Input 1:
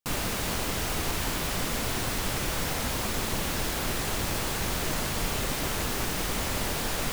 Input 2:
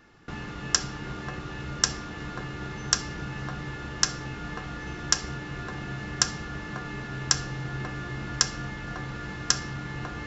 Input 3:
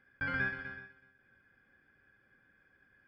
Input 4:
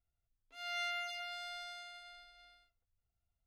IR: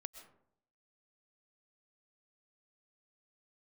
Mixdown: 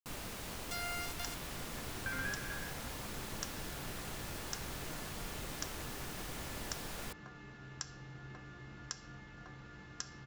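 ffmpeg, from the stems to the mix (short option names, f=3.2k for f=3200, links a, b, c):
-filter_complex "[0:a]volume=-14.5dB[a];[1:a]adelay=500,volume=-16.5dB[b];[2:a]adelay=1850,volume=-0.5dB[c];[3:a]dynaudnorm=f=190:g=7:m=10dB,highshelf=f=2.9k:g=-7,acrusher=bits=4:mix=0:aa=0.000001,volume=-3.5dB[d];[b][c][d]amix=inputs=3:normalize=0,acompressor=threshold=-38dB:ratio=4,volume=0dB[e];[a][e]amix=inputs=2:normalize=0"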